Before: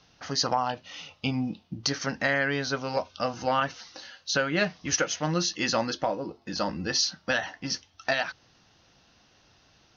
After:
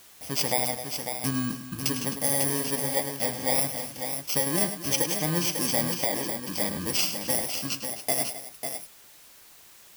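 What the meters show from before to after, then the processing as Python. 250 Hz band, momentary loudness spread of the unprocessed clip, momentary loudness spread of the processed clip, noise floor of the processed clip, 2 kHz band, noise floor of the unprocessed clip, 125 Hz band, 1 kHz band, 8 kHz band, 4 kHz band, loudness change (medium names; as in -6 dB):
+0.5 dB, 8 LU, 7 LU, -52 dBFS, -6.0 dB, -62 dBFS, +1.0 dB, -4.5 dB, no reading, -1.0 dB, +2.0 dB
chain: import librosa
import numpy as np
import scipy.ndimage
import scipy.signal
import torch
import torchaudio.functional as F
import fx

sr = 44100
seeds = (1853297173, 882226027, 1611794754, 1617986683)

p1 = fx.bit_reversed(x, sr, seeds[0], block=32)
p2 = fx.quant_dither(p1, sr, seeds[1], bits=8, dither='none')
p3 = p2 + fx.echo_multitap(p2, sr, ms=(103, 261, 547), db=(-10.5, -14.0, -7.0), dry=0)
y = fx.dmg_noise_colour(p3, sr, seeds[2], colour='white', level_db=-52.0)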